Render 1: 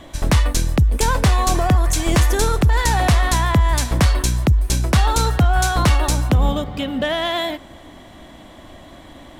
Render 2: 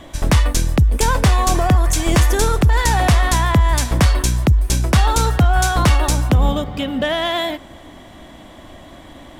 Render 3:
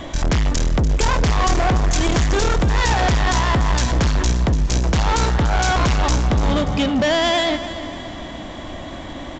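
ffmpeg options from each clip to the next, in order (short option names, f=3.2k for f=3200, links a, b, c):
-af "bandreject=f=4.1k:w=26,volume=1.5dB"
-af "asoftclip=type=tanh:threshold=-22.5dB,aecho=1:1:291|582|873|1164|1455:0.224|0.114|0.0582|0.0297|0.0151,aresample=16000,aresample=44100,volume=7.5dB"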